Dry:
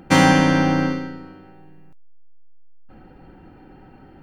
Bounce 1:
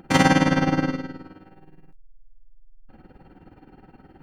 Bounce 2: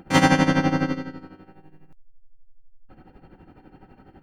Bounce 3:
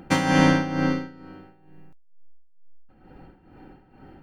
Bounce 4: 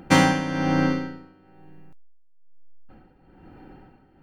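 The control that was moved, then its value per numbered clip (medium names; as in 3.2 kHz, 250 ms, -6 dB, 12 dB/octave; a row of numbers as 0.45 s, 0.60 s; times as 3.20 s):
tremolo, rate: 19 Hz, 12 Hz, 2.2 Hz, 1.1 Hz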